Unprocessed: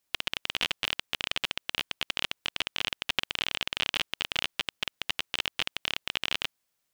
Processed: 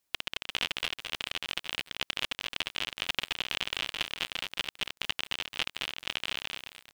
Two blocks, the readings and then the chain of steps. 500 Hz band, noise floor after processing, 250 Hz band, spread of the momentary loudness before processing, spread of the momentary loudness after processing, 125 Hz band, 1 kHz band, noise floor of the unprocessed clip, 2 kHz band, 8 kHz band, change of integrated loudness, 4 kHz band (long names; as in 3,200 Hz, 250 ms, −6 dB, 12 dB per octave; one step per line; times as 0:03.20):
−2.0 dB, −85 dBFS, −2.0 dB, 3 LU, 4 LU, −2.5 dB, −2.0 dB, −79 dBFS, −2.0 dB, −1.5 dB, −2.5 dB, −2.5 dB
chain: shaped tremolo saw down 2 Hz, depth 75%
feedback echo at a low word length 218 ms, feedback 35%, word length 7 bits, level −3 dB